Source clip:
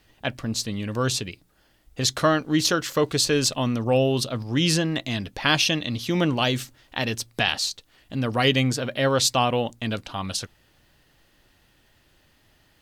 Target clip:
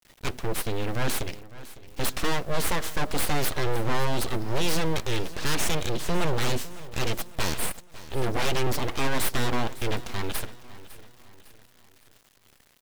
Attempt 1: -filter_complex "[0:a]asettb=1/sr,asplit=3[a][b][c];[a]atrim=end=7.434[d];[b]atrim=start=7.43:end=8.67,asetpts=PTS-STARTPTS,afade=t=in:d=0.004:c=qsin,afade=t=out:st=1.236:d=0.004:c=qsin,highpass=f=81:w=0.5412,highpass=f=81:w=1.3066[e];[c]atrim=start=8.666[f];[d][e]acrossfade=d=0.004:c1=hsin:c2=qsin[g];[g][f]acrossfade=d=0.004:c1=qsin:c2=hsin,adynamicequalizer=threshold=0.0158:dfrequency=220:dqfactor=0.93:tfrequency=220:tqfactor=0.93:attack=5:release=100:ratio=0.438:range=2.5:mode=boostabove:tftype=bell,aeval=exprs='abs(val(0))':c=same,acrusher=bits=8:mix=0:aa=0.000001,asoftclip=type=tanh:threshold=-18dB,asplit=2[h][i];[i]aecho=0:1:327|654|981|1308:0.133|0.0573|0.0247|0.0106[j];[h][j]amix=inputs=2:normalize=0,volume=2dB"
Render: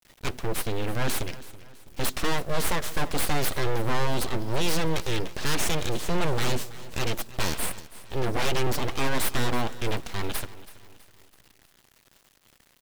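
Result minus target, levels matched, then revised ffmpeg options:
echo 0.228 s early
-filter_complex "[0:a]asettb=1/sr,asplit=3[a][b][c];[a]atrim=end=7.434[d];[b]atrim=start=7.43:end=8.67,asetpts=PTS-STARTPTS,afade=t=in:d=0.004:c=qsin,afade=t=out:st=1.236:d=0.004:c=qsin,highpass=f=81:w=0.5412,highpass=f=81:w=1.3066[e];[c]atrim=start=8.666[f];[d][e]acrossfade=d=0.004:c1=hsin:c2=qsin[g];[g][f]acrossfade=d=0.004:c1=qsin:c2=hsin,adynamicequalizer=threshold=0.0158:dfrequency=220:dqfactor=0.93:tfrequency=220:tqfactor=0.93:attack=5:release=100:ratio=0.438:range=2.5:mode=boostabove:tftype=bell,aeval=exprs='abs(val(0))':c=same,acrusher=bits=8:mix=0:aa=0.000001,asoftclip=type=tanh:threshold=-18dB,asplit=2[h][i];[i]aecho=0:1:555|1110|1665|2220:0.133|0.0573|0.0247|0.0106[j];[h][j]amix=inputs=2:normalize=0,volume=2dB"

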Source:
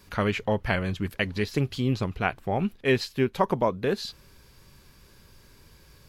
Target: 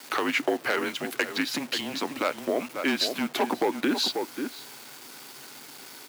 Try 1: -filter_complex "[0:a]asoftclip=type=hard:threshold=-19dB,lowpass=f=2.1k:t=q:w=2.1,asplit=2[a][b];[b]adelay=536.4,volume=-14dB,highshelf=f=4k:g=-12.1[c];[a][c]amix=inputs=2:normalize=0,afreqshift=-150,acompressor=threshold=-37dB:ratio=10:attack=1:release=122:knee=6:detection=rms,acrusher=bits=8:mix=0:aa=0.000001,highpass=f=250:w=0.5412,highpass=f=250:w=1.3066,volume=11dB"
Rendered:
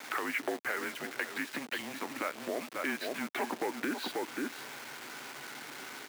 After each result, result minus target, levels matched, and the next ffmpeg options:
compressor: peak gain reduction +11.5 dB; 2000 Hz band +4.0 dB
-filter_complex "[0:a]asoftclip=type=hard:threshold=-19dB,lowpass=f=2.1k:t=q:w=2.1,asplit=2[a][b];[b]adelay=536.4,volume=-14dB,highshelf=f=4k:g=-12.1[c];[a][c]amix=inputs=2:normalize=0,afreqshift=-150,acompressor=threshold=-26.5dB:ratio=10:attack=1:release=122:knee=6:detection=rms,acrusher=bits=8:mix=0:aa=0.000001,highpass=f=250:w=0.5412,highpass=f=250:w=1.3066,volume=11dB"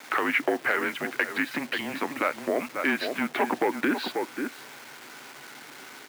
2000 Hz band +3.5 dB
-filter_complex "[0:a]asoftclip=type=hard:threshold=-19dB,asplit=2[a][b];[b]adelay=536.4,volume=-14dB,highshelf=f=4k:g=-12.1[c];[a][c]amix=inputs=2:normalize=0,afreqshift=-150,acompressor=threshold=-26.5dB:ratio=10:attack=1:release=122:knee=6:detection=rms,acrusher=bits=8:mix=0:aa=0.000001,highpass=f=250:w=0.5412,highpass=f=250:w=1.3066,volume=11dB"

